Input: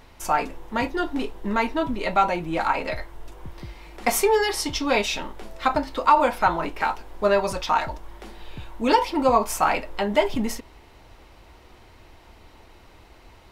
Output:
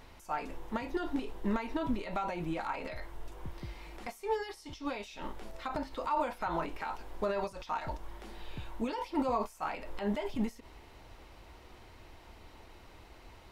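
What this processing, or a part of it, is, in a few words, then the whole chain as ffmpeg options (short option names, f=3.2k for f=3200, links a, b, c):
de-esser from a sidechain: -filter_complex "[0:a]asplit=2[a][b];[b]highpass=6.7k,apad=whole_len=595970[c];[a][c]sidechaincompress=threshold=-57dB:ratio=4:attack=2.4:release=63,volume=-4dB"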